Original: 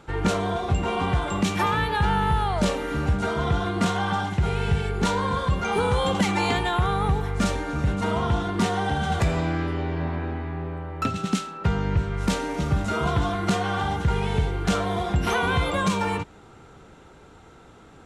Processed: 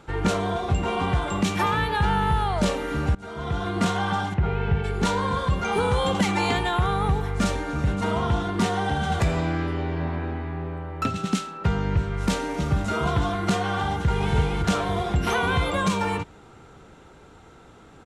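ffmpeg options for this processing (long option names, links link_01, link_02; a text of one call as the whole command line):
ffmpeg -i in.wav -filter_complex "[0:a]asplit=3[link_01][link_02][link_03];[link_01]afade=type=out:start_time=4.33:duration=0.02[link_04];[link_02]lowpass=2200,afade=type=in:start_time=4.33:duration=0.02,afade=type=out:start_time=4.83:duration=0.02[link_05];[link_03]afade=type=in:start_time=4.83:duration=0.02[link_06];[link_04][link_05][link_06]amix=inputs=3:normalize=0,asplit=2[link_07][link_08];[link_08]afade=type=in:start_time=13.92:duration=0.01,afade=type=out:start_time=14.34:duration=0.01,aecho=0:1:280|560|840|1120|1400|1680|1960|2240:0.707946|0.38937|0.214154|0.117784|0.0647815|0.0356298|0.0195964|0.010778[link_09];[link_07][link_09]amix=inputs=2:normalize=0,asplit=2[link_10][link_11];[link_10]atrim=end=3.15,asetpts=PTS-STARTPTS,afade=type=out:start_time=3.146:duration=0.004:curve=hsin:silence=0.0841395[link_12];[link_11]atrim=start=3.15,asetpts=PTS-STARTPTS,afade=type=in:duration=0.63:silence=0.0841395[link_13];[link_12][link_13]concat=n=2:v=0:a=1" out.wav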